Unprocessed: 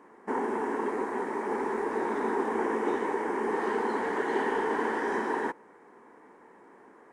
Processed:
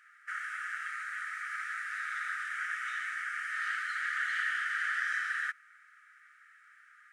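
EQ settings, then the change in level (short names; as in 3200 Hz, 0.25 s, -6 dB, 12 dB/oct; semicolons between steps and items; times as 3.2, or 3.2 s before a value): brick-wall FIR high-pass 1200 Hz; high shelf 4900 Hz -5.5 dB; +5.5 dB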